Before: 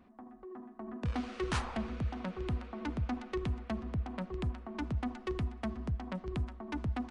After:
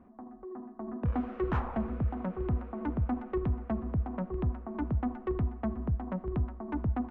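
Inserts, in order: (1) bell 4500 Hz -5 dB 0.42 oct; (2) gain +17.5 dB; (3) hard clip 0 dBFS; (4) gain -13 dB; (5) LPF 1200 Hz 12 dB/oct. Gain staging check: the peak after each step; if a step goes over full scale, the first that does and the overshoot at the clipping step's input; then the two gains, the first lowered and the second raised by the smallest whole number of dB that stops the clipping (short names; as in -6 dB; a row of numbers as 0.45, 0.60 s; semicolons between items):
-23.5, -6.0, -6.0, -19.0, -20.0 dBFS; no overload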